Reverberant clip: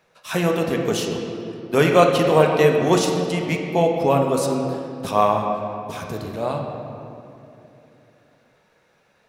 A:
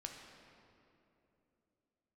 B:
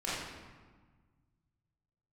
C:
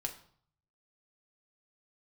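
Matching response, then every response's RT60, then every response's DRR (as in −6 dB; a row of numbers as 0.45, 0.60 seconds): A; 3.0, 1.4, 0.55 seconds; 1.0, −10.0, 2.0 decibels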